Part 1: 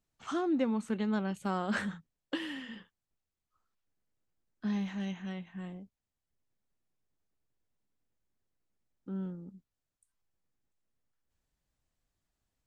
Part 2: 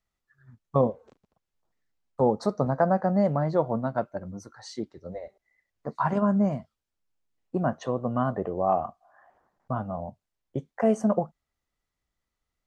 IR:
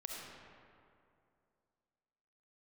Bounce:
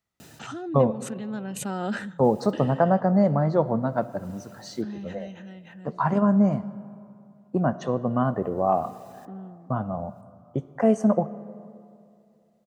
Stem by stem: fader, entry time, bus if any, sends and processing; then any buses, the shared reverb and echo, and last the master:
+2.0 dB, 0.20 s, no send, comb of notches 1.1 kHz; swell ahead of each attack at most 36 dB/s; auto duck -7 dB, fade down 0.30 s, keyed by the second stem
0.0 dB, 0.00 s, send -12 dB, none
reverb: on, RT60 2.5 s, pre-delay 25 ms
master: high-pass 110 Hz; bass shelf 210 Hz +6 dB

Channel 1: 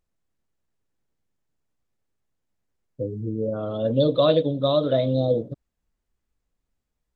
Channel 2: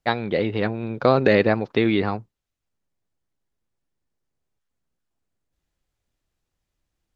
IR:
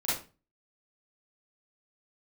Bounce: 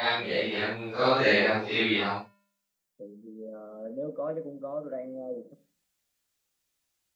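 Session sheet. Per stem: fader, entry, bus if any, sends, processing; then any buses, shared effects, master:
-10.5 dB, 0.00 s, send -20 dB, Chebyshev band-pass 160–2200 Hz, order 5
+2.0 dB, 0.00 s, no send, phase randomisation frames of 200 ms; tilt EQ +3.5 dB/octave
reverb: on, RT60 0.35 s, pre-delay 34 ms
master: feedback comb 200 Hz, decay 0.66 s, harmonics odd, mix 40%

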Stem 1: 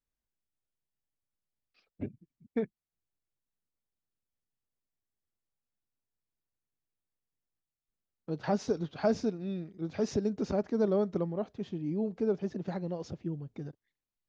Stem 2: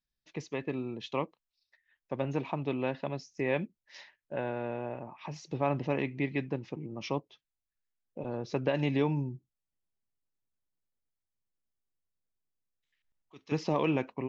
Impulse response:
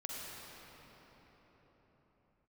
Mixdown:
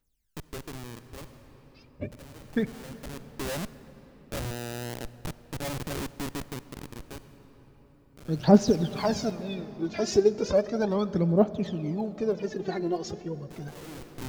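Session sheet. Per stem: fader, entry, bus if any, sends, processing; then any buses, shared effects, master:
+2.5 dB, 0.00 s, send -13.5 dB, phaser 0.35 Hz, delay 3 ms, feedback 75%
+2.5 dB, 0.00 s, send -14.5 dB, low-pass 1.6 kHz 12 dB/octave; Schmitt trigger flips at -35.5 dBFS; auto duck -20 dB, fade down 1.90 s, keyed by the first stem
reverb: on, pre-delay 41 ms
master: treble shelf 3.4 kHz +6.5 dB

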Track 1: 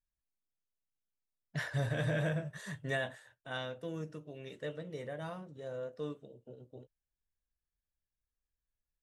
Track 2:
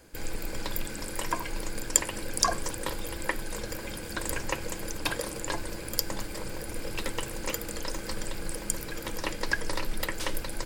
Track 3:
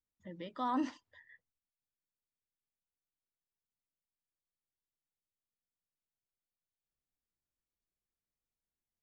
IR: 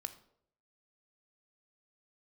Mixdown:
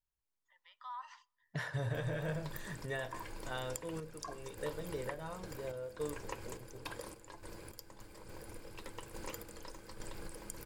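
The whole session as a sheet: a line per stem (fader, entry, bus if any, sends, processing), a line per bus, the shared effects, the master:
-2.0 dB, 0.00 s, bus A, send -6.5 dB, none
-10.0 dB, 1.80 s, bus A, no send, none
-9.5 dB, 0.25 s, no bus, send -12 dB, steep high-pass 930 Hz 36 dB/octave; peak limiter -34.5 dBFS, peak gain reduction 5.5 dB; auto duck -24 dB, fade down 0.30 s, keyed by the first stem
bus A: 0.0 dB, random-step tremolo, depth 80%; compression 12:1, threshold -40 dBFS, peak gain reduction 15.5 dB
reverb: on, RT60 0.70 s, pre-delay 17 ms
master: fifteen-band graphic EQ 100 Hz +6 dB, 400 Hz +4 dB, 1 kHz +6 dB

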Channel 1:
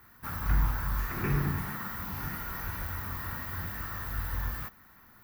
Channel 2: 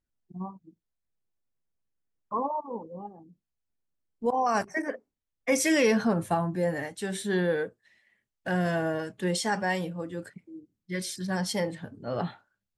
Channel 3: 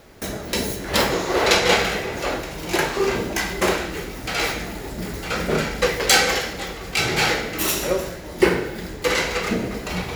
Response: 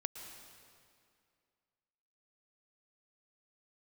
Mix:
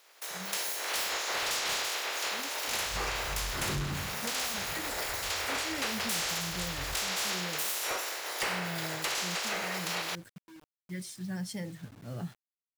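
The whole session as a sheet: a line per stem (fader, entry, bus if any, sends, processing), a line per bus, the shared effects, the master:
-3.0 dB, 2.45 s, no send, steep low-pass 1.7 kHz; auto duck -15 dB, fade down 0.45 s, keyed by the second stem
-17.5 dB, 0.00 s, no send, graphic EQ 125/500/1000/4000 Hz +7/-7/-9/-4 dB; bit crusher 8-bit
-12.5 dB, 0.00 s, no send, spectral peaks clipped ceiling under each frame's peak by 21 dB; high-pass 410 Hz 24 dB/octave; overload inside the chain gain 17 dB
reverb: none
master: level rider gain up to 11 dB; saturation -18 dBFS, distortion -18 dB; compression, threshold -31 dBFS, peak gain reduction 10 dB

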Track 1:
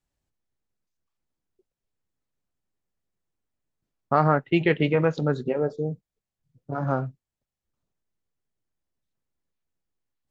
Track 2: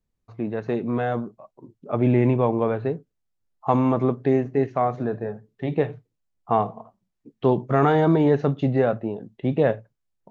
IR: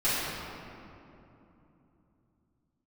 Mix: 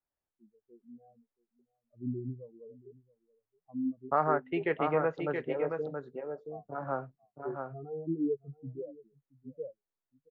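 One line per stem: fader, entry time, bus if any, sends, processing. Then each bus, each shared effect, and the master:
-5.5 dB, 0.00 s, no send, echo send -5.5 dB, three-band isolator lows -12 dB, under 370 Hz, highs -19 dB, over 2.2 kHz
-10.5 dB, 0.00 s, no send, echo send -22 dB, saturation -13 dBFS, distortion -17 dB; spectral contrast expander 4:1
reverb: none
echo: delay 675 ms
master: none

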